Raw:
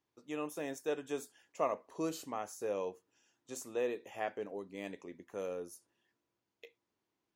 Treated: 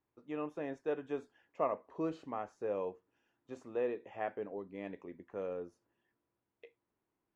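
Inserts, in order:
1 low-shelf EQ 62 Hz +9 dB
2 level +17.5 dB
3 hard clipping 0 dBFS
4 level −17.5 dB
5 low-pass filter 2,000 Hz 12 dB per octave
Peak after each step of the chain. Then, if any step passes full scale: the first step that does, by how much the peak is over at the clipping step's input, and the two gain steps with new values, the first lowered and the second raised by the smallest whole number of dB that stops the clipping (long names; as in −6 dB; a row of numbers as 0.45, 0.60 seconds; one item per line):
−20.0, −2.5, −2.5, −20.0, −20.5 dBFS
no step passes full scale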